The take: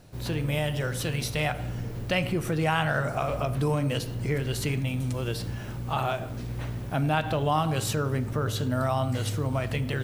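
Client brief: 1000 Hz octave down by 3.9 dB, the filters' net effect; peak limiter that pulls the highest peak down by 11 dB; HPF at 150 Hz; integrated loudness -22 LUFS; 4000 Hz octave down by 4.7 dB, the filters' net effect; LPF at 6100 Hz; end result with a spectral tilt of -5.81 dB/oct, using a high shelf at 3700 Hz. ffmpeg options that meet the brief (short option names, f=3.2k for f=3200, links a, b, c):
-af "highpass=150,lowpass=6.1k,equalizer=f=1k:t=o:g=-5.5,highshelf=f=3.7k:g=3.5,equalizer=f=4k:t=o:g=-8,volume=13dB,alimiter=limit=-11.5dB:level=0:latency=1"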